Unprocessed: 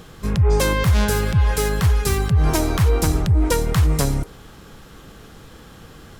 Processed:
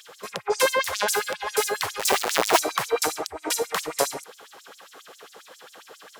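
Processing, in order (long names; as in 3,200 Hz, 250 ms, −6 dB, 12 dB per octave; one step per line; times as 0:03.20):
0:01.99–0:02.60: each half-wave held at its own peak
auto-filter high-pass sine 7.4 Hz 470–7,200 Hz
level −1 dB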